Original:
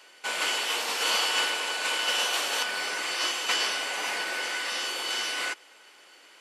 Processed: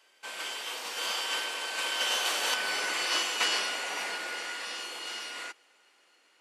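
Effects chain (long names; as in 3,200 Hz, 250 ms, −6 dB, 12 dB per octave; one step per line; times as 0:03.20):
source passing by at 0:02.90, 14 m/s, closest 13 metres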